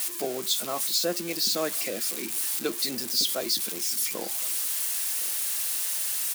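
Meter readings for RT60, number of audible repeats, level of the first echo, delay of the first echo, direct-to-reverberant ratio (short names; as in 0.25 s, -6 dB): none, 1, -22.0 dB, 1.064 s, none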